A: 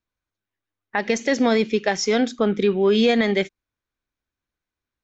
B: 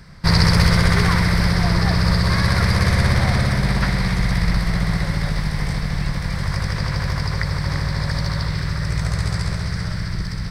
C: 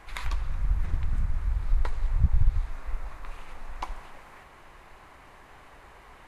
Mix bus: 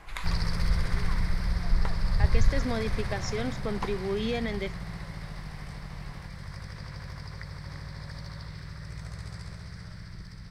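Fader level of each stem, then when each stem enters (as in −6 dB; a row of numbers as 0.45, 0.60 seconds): −13.0, −18.0, −0.5 decibels; 1.25, 0.00, 0.00 seconds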